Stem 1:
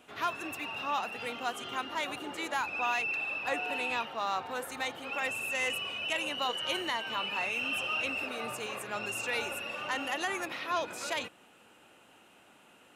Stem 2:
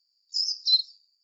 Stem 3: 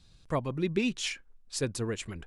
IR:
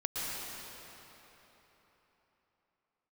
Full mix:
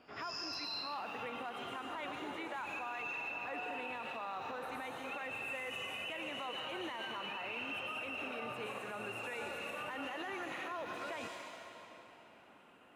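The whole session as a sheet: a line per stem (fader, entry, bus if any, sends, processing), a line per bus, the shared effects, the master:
-3.5 dB, 0.00 s, bus A, send -13.5 dB, short-mantissa float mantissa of 4-bit
-5.0 dB, 0.00 s, no bus, no send, spectral blur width 240 ms
mute
bus A: 0.0 dB, low-pass 2.6 kHz 12 dB/octave; peak limiter -32 dBFS, peak gain reduction 7.5 dB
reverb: on, RT60 3.9 s, pre-delay 107 ms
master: peak limiter -33 dBFS, peak gain reduction 7.5 dB

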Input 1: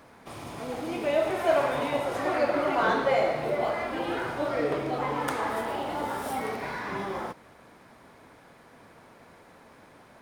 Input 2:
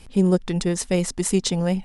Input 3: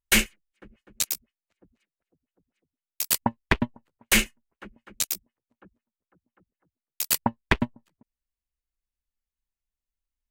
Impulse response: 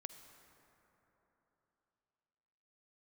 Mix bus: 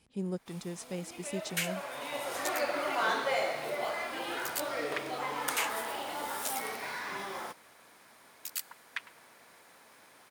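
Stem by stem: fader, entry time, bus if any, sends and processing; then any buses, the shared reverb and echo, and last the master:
1.77 s -15 dB -> 2.30 s -5 dB, 0.20 s, no send, tilt EQ +3.5 dB/octave
-17.0 dB, 0.00 s, no send, high-pass 93 Hz
-15.0 dB, 1.45 s, send -6 dB, steep high-pass 1.2 kHz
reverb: on, RT60 3.6 s, pre-delay 43 ms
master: none

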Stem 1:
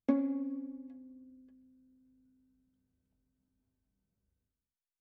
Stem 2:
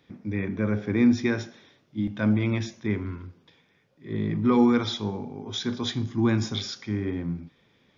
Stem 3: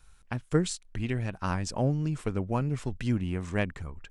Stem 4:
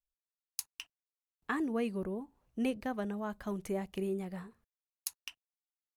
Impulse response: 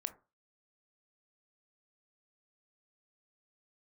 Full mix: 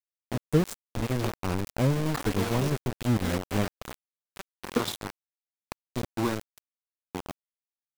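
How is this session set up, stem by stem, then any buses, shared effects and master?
-5.5 dB, 2.20 s, no send, compression 2.5:1, threshold -45 dBFS, peak gain reduction 14.5 dB
-4.0 dB, 0.00 s, send -7.5 dB, graphic EQ 500/1000/2000/4000 Hz +5/+9/-11/+7 dB; sawtooth tremolo in dB decaying 0.84 Hz, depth 19 dB; auto duck -16 dB, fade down 0.95 s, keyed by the third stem
+2.5 dB, 0.00 s, send -16 dB, peaking EQ 1.9 kHz -12 dB 2.1 oct
+1.5 dB, 0.65 s, send -20.5 dB, decimation with a swept rate 19×, swing 60% 3.9 Hz; peaking EQ 130 Hz -8.5 dB 1.4 oct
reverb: on, RT60 0.30 s, pre-delay 17 ms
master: small samples zeroed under -26 dBFS

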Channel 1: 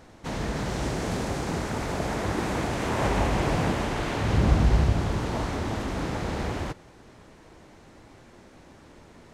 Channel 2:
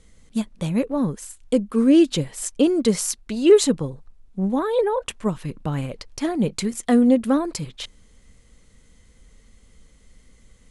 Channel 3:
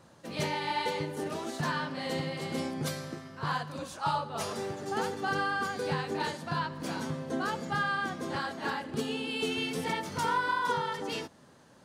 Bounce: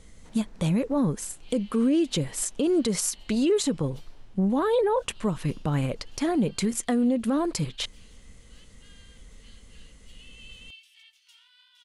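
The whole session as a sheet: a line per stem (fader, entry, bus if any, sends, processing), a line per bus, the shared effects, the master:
-18.5 dB, 0.00 s, no send, compression 4:1, threshold -32 dBFS, peak gain reduction 15 dB; auto duck -8 dB, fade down 1.70 s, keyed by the second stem
+2.5 dB, 0.00 s, no send, compression 2:1, threshold -22 dBFS, peak gain reduction 8 dB
-10.5 dB, 1.10 s, no send, ladder high-pass 2.6 kHz, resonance 65%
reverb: none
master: peak limiter -16.5 dBFS, peak gain reduction 10.5 dB

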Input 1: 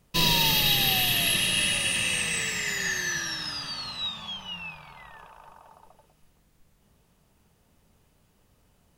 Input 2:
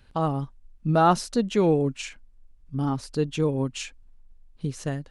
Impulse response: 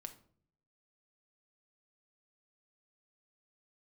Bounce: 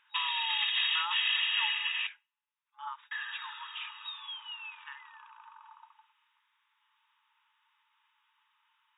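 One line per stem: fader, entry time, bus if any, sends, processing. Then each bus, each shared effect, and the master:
+1.0 dB, 0.00 s, muted 2.07–3.11 s, send -14.5 dB, upward expansion 1.5:1, over -27 dBFS; auto duck -7 dB, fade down 1.95 s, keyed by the second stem
-1.5 dB, 0.00 s, no send, feedback comb 78 Hz, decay 0.21 s, harmonics odd, mix 50%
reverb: on, RT60 0.55 s, pre-delay 5 ms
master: FFT band-pass 850–3800 Hz; compressor with a negative ratio -30 dBFS, ratio -1

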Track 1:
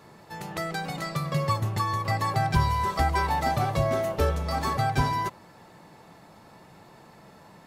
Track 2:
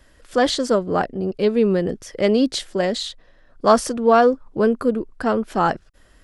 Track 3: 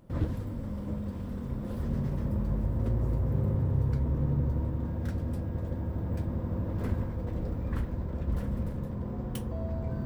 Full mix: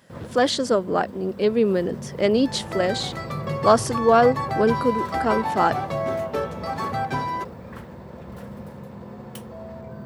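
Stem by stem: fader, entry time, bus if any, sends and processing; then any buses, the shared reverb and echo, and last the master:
+1.0 dB, 2.15 s, no send, treble shelf 4.4 kHz -11 dB
-1.5 dB, 0.00 s, no send, none
+2.5 dB, 0.00 s, no send, peaking EQ 290 Hz -15 dB 0.3 oct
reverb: none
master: high-pass 190 Hz 12 dB/octave

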